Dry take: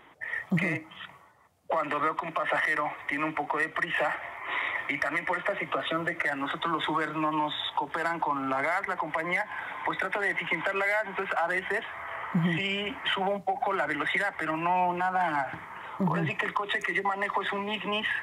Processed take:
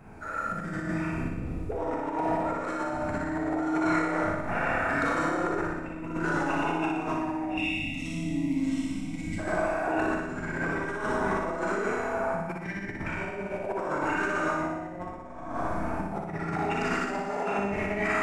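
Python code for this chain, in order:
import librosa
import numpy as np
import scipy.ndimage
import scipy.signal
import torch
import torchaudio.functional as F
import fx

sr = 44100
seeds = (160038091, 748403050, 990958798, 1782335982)

p1 = fx.dmg_wind(x, sr, seeds[0], corner_hz=190.0, level_db=-40.0)
p2 = fx.formant_shift(p1, sr, semitones=-5)
p3 = fx.peak_eq(p2, sr, hz=1700.0, db=-7.5, octaves=2.3)
p4 = 10.0 ** (-27.5 / 20.0) * np.tanh(p3 / 10.0 ** (-27.5 / 20.0))
p5 = p3 + (p4 * librosa.db_to_amplitude(-4.5))
p6 = fx.rev_schroeder(p5, sr, rt60_s=1.5, comb_ms=28, drr_db=-4.5)
p7 = fx.spec_box(p6, sr, start_s=7.57, length_s=1.82, low_hz=320.0, high_hz=1900.0, gain_db=-29)
p8 = fx.over_compress(p7, sr, threshold_db=-26.0, ratio=-0.5)
p9 = fx.low_shelf(p8, sr, hz=140.0, db=-8.5)
p10 = fx.notch(p9, sr, hz=560.0, q=12.0)
p11 = fx.room_flutter(p10, sr, wall_m=10.3, rt60_s=0.96)
y = p11 * librosa.db_to_amplitude(-4.0)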